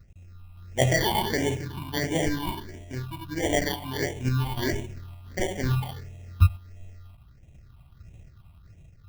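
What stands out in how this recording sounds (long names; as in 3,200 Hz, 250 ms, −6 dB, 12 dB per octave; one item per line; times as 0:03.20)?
aliases and images of a low sample rate 1,300 Hz, jitter 0%
sample-and-hold tremolo
phaser sweep stages 6, 1.5 Hz, lowest notch 450–1,300 Hz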